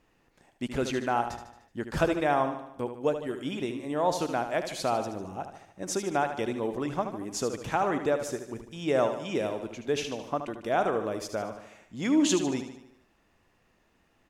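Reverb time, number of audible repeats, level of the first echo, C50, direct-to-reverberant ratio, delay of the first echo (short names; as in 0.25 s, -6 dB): none, 5, -9.0 dB, none, none, 75 ms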